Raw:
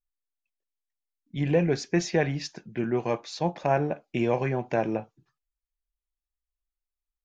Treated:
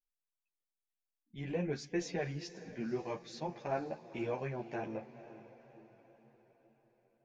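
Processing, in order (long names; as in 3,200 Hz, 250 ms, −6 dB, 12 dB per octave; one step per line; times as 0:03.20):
feedback delay with all-pass diffusion 498 ms, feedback 50%, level −15 dB
tape wow and flutter 19 cents
string-ensemble chorus
level −8.5 dB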